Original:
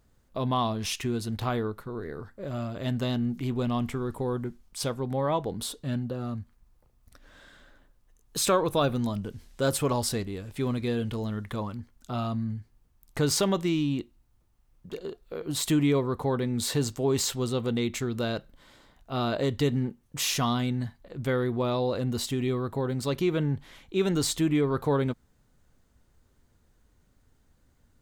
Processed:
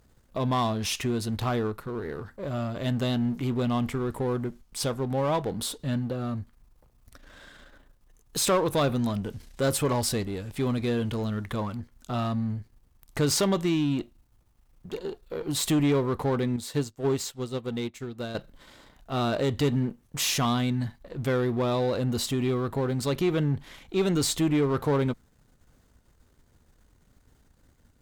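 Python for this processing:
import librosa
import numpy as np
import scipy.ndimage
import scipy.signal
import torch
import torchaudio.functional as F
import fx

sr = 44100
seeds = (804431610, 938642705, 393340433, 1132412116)

y = np.where(x < 0.0, 10.0 ** (-7.0 / 20.0) * x, x)
y = fx.tube_stage(y, sr, drive_db=23.0, bias=0.45)
y = fx.upward_expand(y, sr, threshold_db=-46.0, expansion=2.5, at=(16.56, 18.35))
y = F.gain(torch.from_numpy(y), 8.0).numpy()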